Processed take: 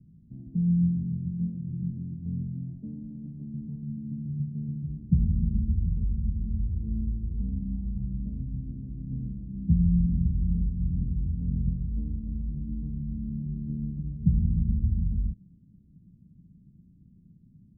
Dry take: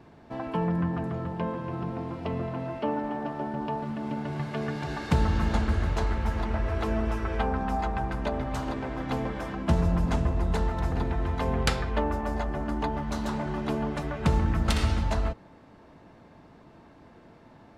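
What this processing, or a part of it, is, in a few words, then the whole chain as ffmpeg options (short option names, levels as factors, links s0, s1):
the neighbour's flat through the wall: -af "lowpass=f=190:w=0.5412,lowpass=f=190:w=1.3066,equalizer=f=180:t=o:w=0.59:g=7"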